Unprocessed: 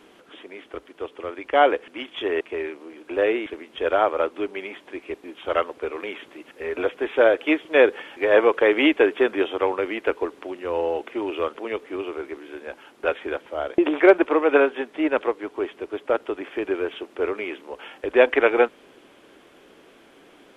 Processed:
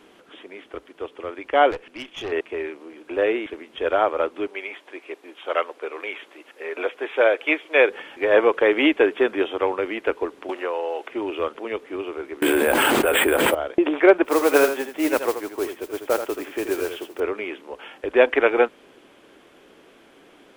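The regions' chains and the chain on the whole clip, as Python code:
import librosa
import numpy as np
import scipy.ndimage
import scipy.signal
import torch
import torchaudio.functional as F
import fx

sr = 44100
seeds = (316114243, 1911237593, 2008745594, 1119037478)

y = fx.chain(x, sr, fx.peak_eq(hz=2600.0, db=3.5, octaves=0.34),
    fx.tube_stage(drive_db=25.0, bias=0.55), at=(1.71, 2.32))
y = fx.chain(y, sr, fx.highpass(hz=410.0, slope=12),
    fx.dynamic_eq(hz=2300.0, q=5.8, threshold_db=-42.0, ratio=4.0, max_db=7), at=(4.47, 7.9))
y = fx.chain(y, sr, fx.highpass(hz=500.0, slope=12),
    fx.band_squash(depth_pct=100), at=(10.49, 11.1))
y = fx.chain(y, sr, fx.resample_bad(factor=4, down='filtered', up='hold'),
    fx.env_flatten(amount_pct=100), at=(12.42, 13.55))
y = fx.chain(y, sr, fx.mod_noise(seeds[0], snr_db=15),
    fx.echo_single(ms=81, db=-9.0), at=(14.24, 17.2))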